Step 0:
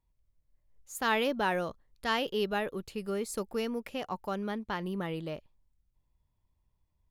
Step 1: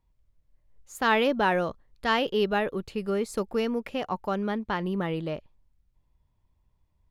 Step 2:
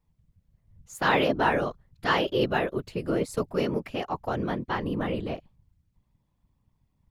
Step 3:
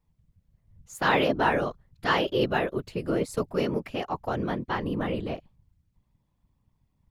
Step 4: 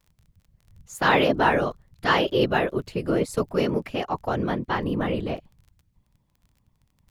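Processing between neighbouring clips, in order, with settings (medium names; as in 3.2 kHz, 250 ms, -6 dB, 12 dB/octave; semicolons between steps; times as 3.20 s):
treble shelf 5.9 kHz -11.5 dB; trim +6 dB
whisper effect
no audible change
crackle 20 per s -48 dBFS; trim +3.5 dB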